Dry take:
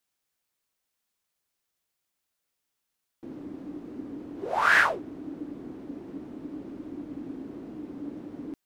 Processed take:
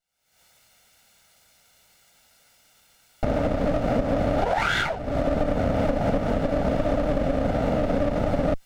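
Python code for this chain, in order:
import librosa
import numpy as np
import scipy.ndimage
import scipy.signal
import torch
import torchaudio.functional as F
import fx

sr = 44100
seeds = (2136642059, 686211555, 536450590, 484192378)

y = fx.lower_of_two(x, sr, delay_ms=1.4)
y = fx.recorder_agc(y, sr, target_db=-13.0, rise_db_per_s=72.0, max_gain_db=30)
y = fx.high_shelf(y, sr, hz=11000.0, db=-10.5)
y = fx.notch(y, sr, hz=1100.0, q=9.6)
y = F.gain(torch.from_numpy(y), -2.5).numpy()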